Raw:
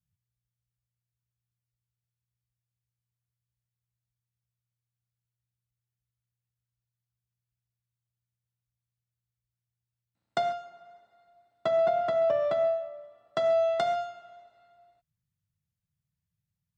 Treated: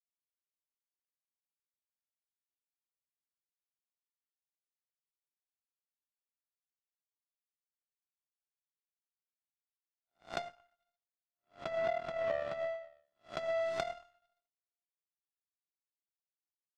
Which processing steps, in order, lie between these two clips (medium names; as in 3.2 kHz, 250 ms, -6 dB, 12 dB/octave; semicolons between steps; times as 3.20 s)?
reverse spectral sustain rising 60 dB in 0.53 s; repeats whose band climbs or falls 114 ms, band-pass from 690 Hz, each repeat 0.7 oct, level -11 dB; power-law waveshaper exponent 2; trim -4.5 dB